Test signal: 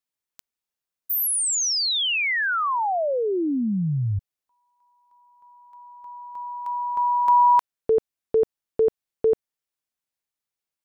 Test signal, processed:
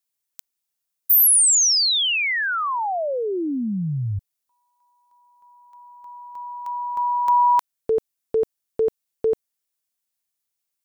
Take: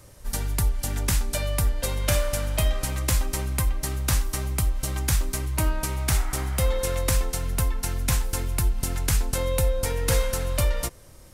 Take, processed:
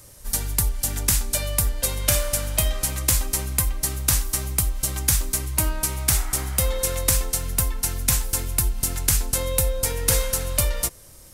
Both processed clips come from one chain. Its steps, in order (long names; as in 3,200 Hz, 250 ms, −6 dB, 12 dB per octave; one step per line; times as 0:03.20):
high-shelf EQ 4,500 Hz +11 dB
level −1 dB